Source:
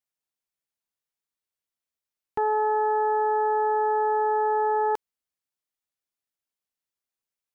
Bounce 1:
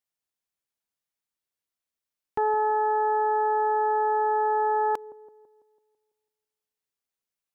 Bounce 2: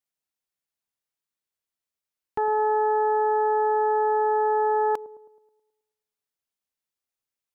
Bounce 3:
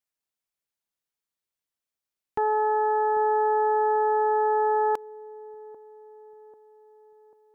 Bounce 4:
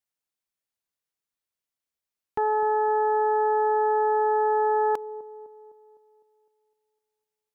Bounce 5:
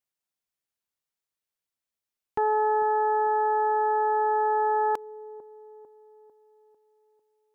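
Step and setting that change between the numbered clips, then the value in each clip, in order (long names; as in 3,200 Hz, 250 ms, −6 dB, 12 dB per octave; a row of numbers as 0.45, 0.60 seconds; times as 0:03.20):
delay with a low-pass on its return, delay time: 166, 107, 792, 254, 448 milliseconds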